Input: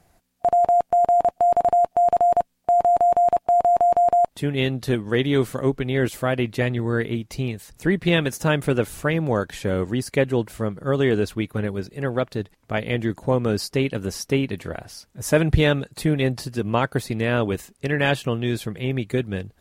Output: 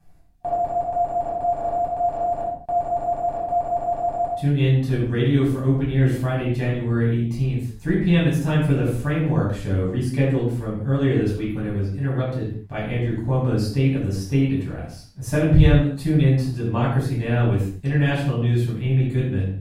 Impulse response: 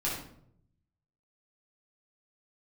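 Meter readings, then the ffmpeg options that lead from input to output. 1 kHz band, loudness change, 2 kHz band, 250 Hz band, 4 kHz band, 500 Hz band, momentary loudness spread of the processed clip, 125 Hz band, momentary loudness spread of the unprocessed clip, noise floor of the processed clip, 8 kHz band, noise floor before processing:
-5.5 dB, 0.0 dB, -4.5 dB, +2.5 dB, -5.0 dB, -4.0 dB, 7 LU, +6.5 dB, 10 LU, -37 dBFS, n/a, -64 dBFS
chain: -filter_complex "[0:a]lowshelf=f=150:g=10[a];[1:a]atrim=start_sample=2205,afade=t=out:st=0.29:d=0.01,atrim=end_sample=13230,asetrate=43218,aresample=44100[b];[a][b]afir=irnorm=-1:irlink=0,volume=-10.5dB"

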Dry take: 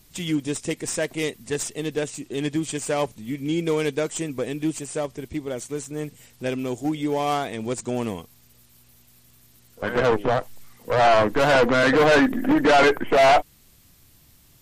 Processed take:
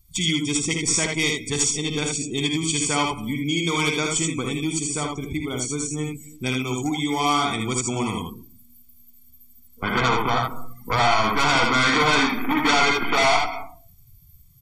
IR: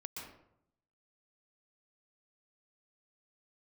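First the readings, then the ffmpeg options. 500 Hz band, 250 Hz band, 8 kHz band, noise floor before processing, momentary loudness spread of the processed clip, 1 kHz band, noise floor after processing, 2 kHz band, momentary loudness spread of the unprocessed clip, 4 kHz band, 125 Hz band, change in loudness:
-6.5 dB, 0.0 dB, +9.0 dB, -56 dBFS, 10 LU, +1.0 dB, -50 dBFS, +2.5 dB, 14 LU, +8.0 dB, +3.5 dB, +0.5 dB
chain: -filter_complex "[0:a]aecho=1:1:0.9:0.79,aecho=1:1:55|79:0.447|0.631,asplit=2[a][b];[1:a]atrim=start_sample=2205[c];[b][c]afir=irnorm=-1:irlink=0,volume=-10.5dB[d];[a][d]amix=inputs=2:normalize=0,acrossover=split=580|7500[e][f][g];[e]acompressor=threshold=-24dB:ratio=4[h];[f]acompressor=threshold=-19dB:ratio=4[i];[g]acompressor=threshold=-50dB:ratio=4[j];[h][i][j]amix=inputs=3:normalize=0,highshelf=f=3.4k:g=10.5,afftdn=nr=22:nf=-37"

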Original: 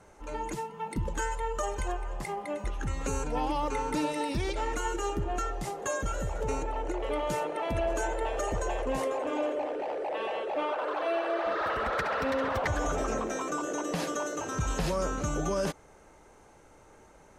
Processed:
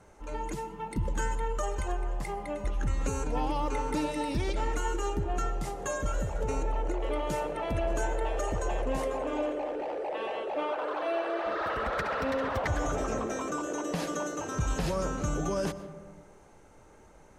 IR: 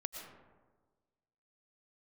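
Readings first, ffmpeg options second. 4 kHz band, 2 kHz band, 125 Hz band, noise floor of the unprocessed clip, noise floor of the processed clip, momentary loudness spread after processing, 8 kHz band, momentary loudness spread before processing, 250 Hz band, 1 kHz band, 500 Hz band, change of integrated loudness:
-1.5 dB, -1.5 dB, +2.0 dB, -56 dBFS, -55 dBFS, 5 LU, -1.5 dB, 6 LU, +0.5 dB, -1.5 dB, -1.0 dB, -0.5 dB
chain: -filter_complex "[0:a]asplit=2[a][b];[1:a]atrim=start_sample=2205,lowshelf=f=360:g=9[c];[b][c]afir=irnorm=-1:irlink=0,volume=-6dB[d];[a][d]amix=inputs=2:normalize=0,volume=-4.5dB"

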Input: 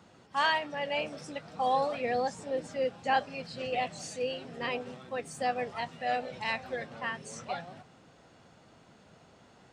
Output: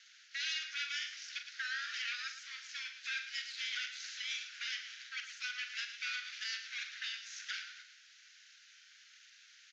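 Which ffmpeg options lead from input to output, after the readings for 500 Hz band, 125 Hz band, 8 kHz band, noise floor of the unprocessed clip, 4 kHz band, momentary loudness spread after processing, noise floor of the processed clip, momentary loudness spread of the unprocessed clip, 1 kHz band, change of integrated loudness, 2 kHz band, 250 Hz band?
under -40 dB, under -40 dB, +0.5 dB, -59 dBFS, +1.5 dB, 21 LU, -62 dBFS, 10 LU, -23.5 dB, -6.5 dB, -3.0 dB, under -40 dB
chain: -filter_complex "[0:a]acrossover=split=4700[a][b];[b]acompressor=threshold=-56dB:ratio=4:attack=1:release=60[c];[a][c]amix=inputs=2:normalize=0,highshelf=f=2.6k:g=9,alimiter=level_in=2dB:limit=-24dB:level=0:latency=1:release=206,volume=-2dB,aeval=exprs='abs(val(0))':c=same,asuperpass=centerf=3200:order=20:qfactor=0.6,aecho=1:1:43.73|110.8:0.355|0.316,volume=3dB"

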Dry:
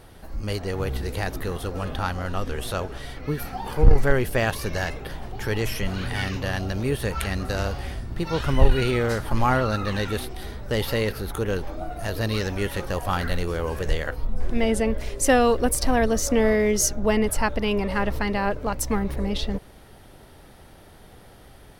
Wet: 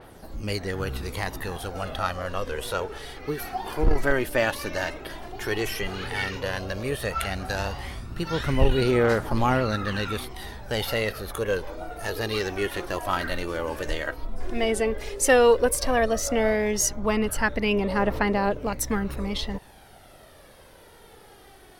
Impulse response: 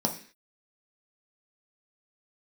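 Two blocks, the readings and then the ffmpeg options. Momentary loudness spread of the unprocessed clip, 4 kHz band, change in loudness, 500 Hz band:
10 LU, 0.0 dB, -1.0 dB, 0.0 dB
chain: -af "lowshelf=f=150:g=-11,aphaser=in_gain=1:out_gain=1:delay=3.5:decay=0.46:speed=0.11:type=triangular,adynamicequalizer=threshold=0.01:dfrequency=4000:dqfactor=0.7:tfrequency=4000:tqfactor=0.7:attack=5:release=100:ratio=0.375:range=2:mode=cutabove:tftype=highshelf"

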